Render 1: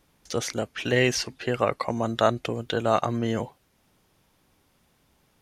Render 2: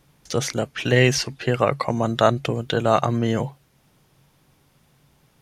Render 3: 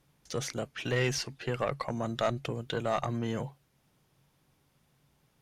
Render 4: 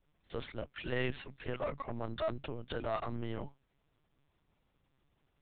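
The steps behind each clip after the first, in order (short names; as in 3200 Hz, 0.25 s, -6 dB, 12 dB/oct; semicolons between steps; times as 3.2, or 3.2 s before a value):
bell 140 Hz +13.5 dB 0.24 oct; gain +4 dB
tube stage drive 9 dB, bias 0.3; gain -9 dB
LPC vocoder at 8 kHz pitch kept; gain -5.5 dB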